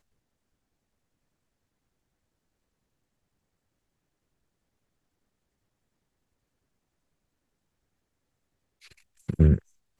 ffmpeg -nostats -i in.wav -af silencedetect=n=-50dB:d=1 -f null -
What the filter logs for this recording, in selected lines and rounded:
silence_start: 0.00
silence_end: 8.82 | silence_duration: 8.82